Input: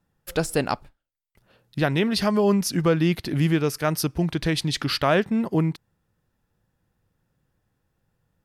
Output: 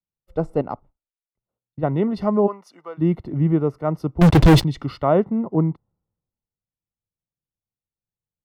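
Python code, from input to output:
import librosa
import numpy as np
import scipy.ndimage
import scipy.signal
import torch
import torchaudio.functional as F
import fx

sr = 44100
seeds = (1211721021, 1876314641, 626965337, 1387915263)

y = scipy.signal.savgol_filter(x, 65, 4, mode='constant')
y = fx.level_steps(y, sr, step_db=9, at=(0.61, 1.83))
y = fx.highpass(y, sr, hz=890.0, slope=12, at=(2.46, 2.97), fade=0.02)
y = fx.leveller(y, sr, passes=5, at=(4.21, 4.64))
y = fx.band_widen(y, sr, depth_pct=70)
y = F.gain(torch.from_numpy(y), 2.5).numpy()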